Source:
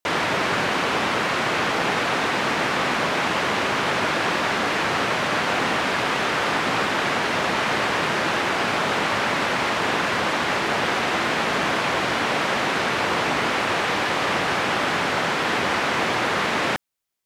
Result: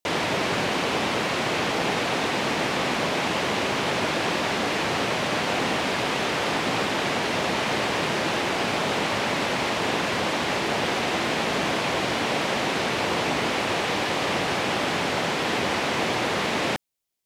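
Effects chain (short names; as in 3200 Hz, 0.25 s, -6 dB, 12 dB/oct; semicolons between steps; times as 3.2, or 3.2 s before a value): bell 1400 Hz -6.5 dB 1.2 oct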